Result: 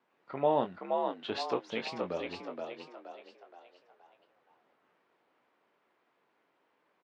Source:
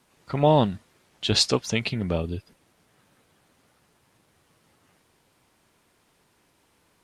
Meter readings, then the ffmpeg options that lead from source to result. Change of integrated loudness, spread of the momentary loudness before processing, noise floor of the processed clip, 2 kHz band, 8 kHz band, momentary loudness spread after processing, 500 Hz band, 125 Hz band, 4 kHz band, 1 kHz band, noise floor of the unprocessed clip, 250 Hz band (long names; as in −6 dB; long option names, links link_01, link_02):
−10.5 dB, 14 LU, −75 dBFS, −9.0 dB, −25.5 dB, 19 LU, −6.0 dB, −22.0 dB, −16.5 dB, −5.0 dB, −66 dBFS, −12.0 dB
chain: -filter_complex "[0:a]highpass=330,lowpass=2100,asplit=2[link_01][link_02];[link_02]adelay=22,volume=-8.5dB[link_03];[link_01][link_03]amix=inputs=2:normalize=0,asplit=6[link_04][link_05][link_06][link_07][link_08][link_09];[link_05]adelay=473,afreqshift=62,volume=-4dB[link_10];[link_06]adelay=946,afreqshift=124,volume=-11.3dB[link_11];[link_07]adelay=1419,afreqshift=186,volume=-18.7dB[link_12];[link_08]adelay=1892,afreqshift=248,volume=-26dB[link_13];[link_09]adelay=2365,afreqshift=310,volume=-33.3dB[link_14];[link_04][link_10][link_11][link_12][link_13][link_14]amix=inputs=6:normalize=0,volume=-7.5dB"